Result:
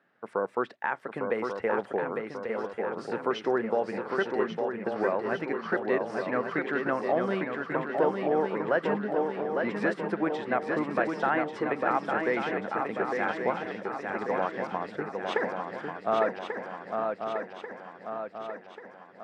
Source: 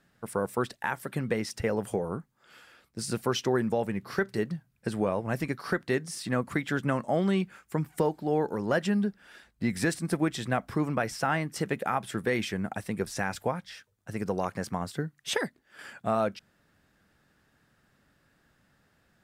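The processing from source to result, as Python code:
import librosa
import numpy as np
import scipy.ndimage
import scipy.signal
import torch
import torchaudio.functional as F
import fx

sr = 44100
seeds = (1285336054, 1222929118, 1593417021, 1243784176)

y = fx.bandpass_edges(x, sr, low_hz=350.0, high_hz=2000.0)
y = fx.echo_swing(y, sr, ms=1139, ratio=3, feedback_pct=53, wet_db=-4.5)
y = y * librosa.db_to_amplitude(2.0)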